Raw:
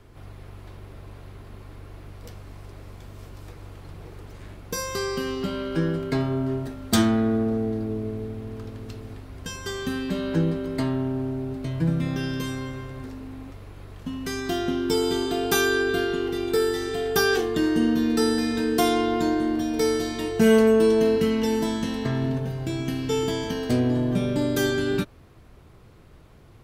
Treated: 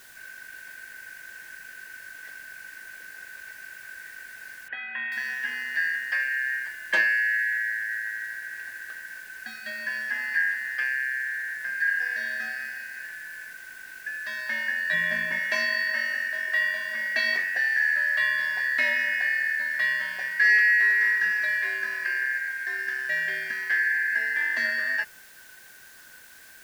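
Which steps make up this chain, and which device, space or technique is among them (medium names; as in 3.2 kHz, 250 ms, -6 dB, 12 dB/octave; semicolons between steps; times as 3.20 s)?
split-band scrambled radio (four frequency bands reordered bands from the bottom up 3142; band-pass 340–2900 Hz; white noise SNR 24 dB); 4.68–5.12 s: elliptic low-pass 3.1 kHz, stop band 50 dB; 14.93–15.39 s: bass shelf 360 Hz +11.5 dB; trim -2 dB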